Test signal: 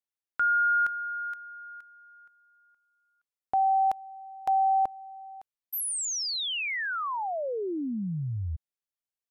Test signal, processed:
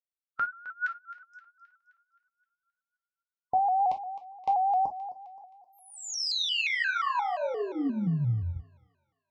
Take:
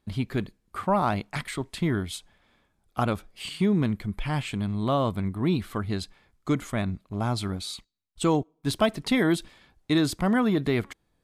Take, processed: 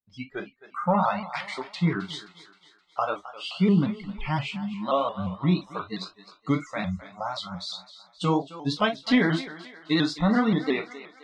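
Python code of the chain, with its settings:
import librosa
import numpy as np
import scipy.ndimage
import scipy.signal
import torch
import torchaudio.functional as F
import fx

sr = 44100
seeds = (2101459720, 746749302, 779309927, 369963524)

y = scipy.signal.sosfilt(scipy.signal.butter(4, 5600.0, 'lowpass', fs=sr, output='sos'), x)
y = fx.noise_reduce_blind(y, sr, reduce_db=28)
y = fx.dynamic_eq(y, sr, hz=490.0, q=3.6, threshold_db=-43.0, ratio=4.0, max_db=-4)
y = fx.echo_thinned(y, sr, ms=262, feedback_pct=50, hz=420.0, wet_db=-14)
y = fx.rev_gated(y, sr, seeds[0], gate_ms=80, shape='falling', drr_db=1.5)
y = fx.vibrato_shape(y, sr, shape='saw_up', rate_hz=5.7, depth_cents=100.0)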